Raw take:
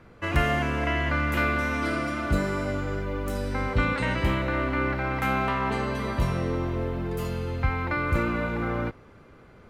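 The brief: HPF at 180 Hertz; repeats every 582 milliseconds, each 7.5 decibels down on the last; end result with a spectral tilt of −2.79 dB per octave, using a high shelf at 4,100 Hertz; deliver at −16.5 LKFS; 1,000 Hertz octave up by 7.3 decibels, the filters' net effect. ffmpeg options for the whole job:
ffmpeg -i in.wav -af "highpass=180,equalizer=frequency=1000:width_type=o:gain=8.5,highshelf=frequency=4100:gain=9,aecho=1:1:582|1164|1746|2328|2910:0.422|0.177|0.0744|0.0312|0.0131,volume=7dB" out.wav

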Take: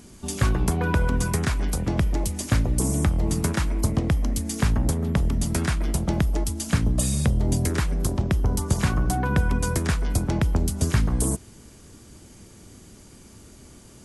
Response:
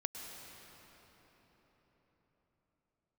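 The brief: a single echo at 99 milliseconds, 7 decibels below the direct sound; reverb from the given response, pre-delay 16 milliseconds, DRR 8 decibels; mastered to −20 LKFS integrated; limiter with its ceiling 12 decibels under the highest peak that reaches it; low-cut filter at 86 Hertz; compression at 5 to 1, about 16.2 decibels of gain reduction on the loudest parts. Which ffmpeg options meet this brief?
-filter_complex "[0:a]highpass=86,acompressor=threshold=-37dB:ratio=5,alimiter=level_in=8dB:limit=-24dB:level=0:latency=1,volume=-8dB,aecho=1:1:99:0.447,asplit=2[link_01][link_02];[1:a]atrim=start_sample=2205,adelay=16[link_03];[link_02][link_03]afir=irnorm=-1:irlink=0,volume=-8dB[link_04];[link_01][link_04]amix=inputs=2:normalize=0,volume=21dB"

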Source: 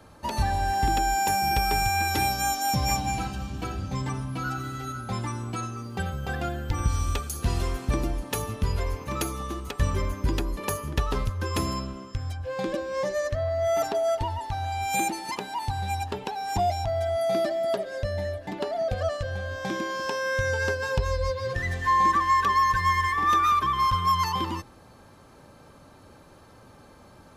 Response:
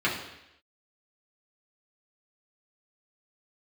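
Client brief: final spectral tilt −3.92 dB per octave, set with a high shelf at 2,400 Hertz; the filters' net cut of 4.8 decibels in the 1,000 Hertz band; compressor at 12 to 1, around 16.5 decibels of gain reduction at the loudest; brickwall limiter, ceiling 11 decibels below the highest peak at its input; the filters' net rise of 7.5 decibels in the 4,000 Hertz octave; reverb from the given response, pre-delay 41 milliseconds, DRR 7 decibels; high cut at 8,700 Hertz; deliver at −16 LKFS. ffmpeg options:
-filter_complex "[0:a]lowpass=8700,equalizer=frequency=1000:width_type=o:gain=-7,highshelf=frequency=2400:gain=4,equalizer=frequency=4000:width_type=o:gain=7,acompressor=threshold=-36dB:ratio=12,alimiter=level_in=7.5dB:limit=-24dB:level=0:latency=1,volume=-7.5dB,asplit=2[link_01][link_02];[1:a]atrim=start_sample=2205,adelay=41[link_03];[link_02][link_03]afir=irnorm=-1:irlink=0,volume=-20dB[link_04];[link_01][link_04]amix=inputs=2:normalize=0,volume=24dB"

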